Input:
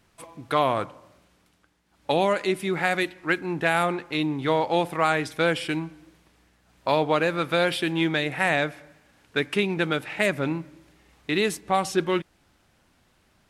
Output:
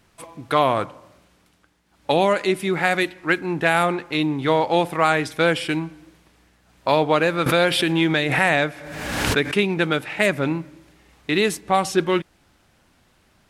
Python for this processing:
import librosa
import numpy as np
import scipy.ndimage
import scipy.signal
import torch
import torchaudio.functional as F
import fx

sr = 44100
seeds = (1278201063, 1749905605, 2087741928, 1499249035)

y = fx.pre_swell(x, sr, db_per_s=38.0, at=(7.46, 9.55))
y = y * 10.0 ** (4.0 / 20.0)